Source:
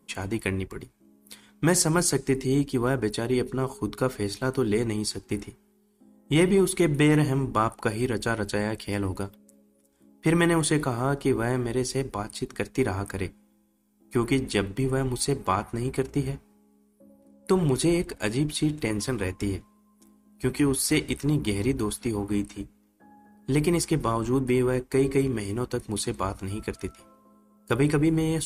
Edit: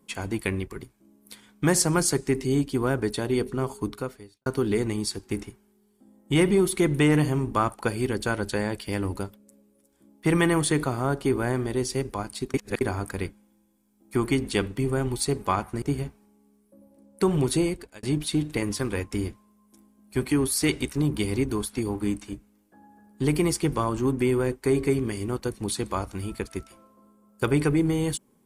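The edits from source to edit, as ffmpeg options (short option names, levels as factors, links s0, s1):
-filter_complex "[0:a]asplit=6[s0][s1][s2][s3][s4][s5];[s0]atrim=end=4.46,asetpts=PTS-STARTPTS,afade=t=out:st=3.85:d=0.61:c=qua[s6];[s1]atrim=start=4.46:end=12.542,asetpts=PTS-STARTPTS,afade=t=in:d=0.004:c=hsin[s7];[s2]atrim=start=12.538:end=12.812,asetpts=PTS-STARTPTS,areverse[s8];[s3]atrim=start=12.808:end=15.822[s9];[s4]atrim=start=16.098:end=18.31,asetpts=PTS-STARTPTS,afade=t=out:st=1.752:d=0.46[s10];[s5]atrim=start=18.31,asetpts=PTS-STARTPTS,afade=t=in:d=0.004:c=hsin[s11];[s6][s7]concat=n=2:v=0:a=1[s12];[s12][s8]acrossfade=d=0.004:c1=hsin:c2=hsin[s13];[s13][s9]acrossfade=d=0.004:c1=hsin:c2=hsin[s14];[s10][s11]concat=n=2:v=0:a=1[s15];[s14][s15]acrossfade=d=0.004:c1=hsin:c2=hsin"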